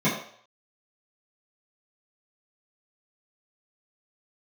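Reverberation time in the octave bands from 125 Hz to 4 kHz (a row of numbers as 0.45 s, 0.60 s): 0.35 s, 0.40 s, 0.55 s, 0.55 s, 0.55 s, 0.60 s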